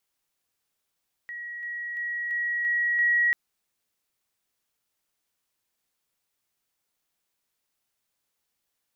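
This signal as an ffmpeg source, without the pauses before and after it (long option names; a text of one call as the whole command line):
ffmpeg -f lavfi -i "aevalsrc='pow(10,(-34+3*floor(t/0.34))/20)*sin(2*PI*1910*t)':duration=2.04:sample_rate=44100" out.wav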